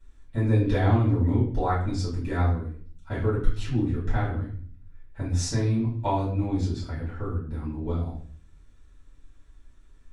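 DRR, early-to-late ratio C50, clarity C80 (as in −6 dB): −11.0 dB, 5.5 dB, 9.0 dB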